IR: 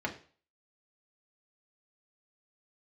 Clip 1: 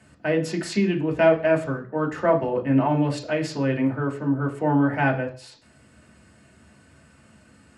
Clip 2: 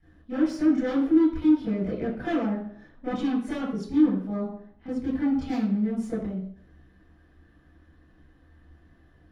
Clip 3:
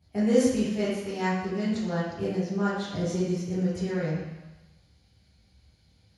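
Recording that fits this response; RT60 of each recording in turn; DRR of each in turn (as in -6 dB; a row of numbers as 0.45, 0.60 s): 1; 0.40, 0.60, 1.1 s; -1.0, -12.5, -10.0 dB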